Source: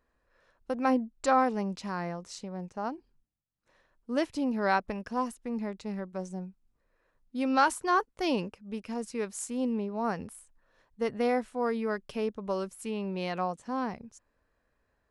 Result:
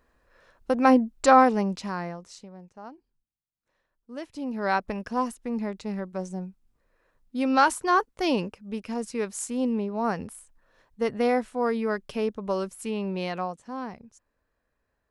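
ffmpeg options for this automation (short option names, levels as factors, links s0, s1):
-af "volume=10.6,afade=t=out:st=1.4:d=0.78:silence=0.354813,afade=t=out:st=2.18:d=0.44:silence=0.421697,afade=t=in:st=4.23:d=0.75:silence=0.237137,afade=t=out:st=13.13:d=0.48:silence=0.473151"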